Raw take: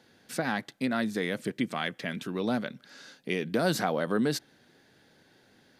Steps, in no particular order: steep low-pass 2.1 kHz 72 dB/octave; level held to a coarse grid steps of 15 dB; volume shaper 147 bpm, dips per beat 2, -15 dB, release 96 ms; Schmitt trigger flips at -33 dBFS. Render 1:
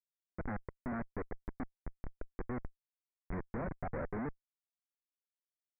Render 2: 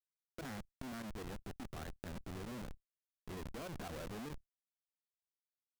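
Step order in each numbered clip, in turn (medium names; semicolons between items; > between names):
volume shaper > level held to a coarse grid > Schmitt trigger > steep low-pass; steep low-pass > Schmitt trigger > volume shaper > level held to a coarse grid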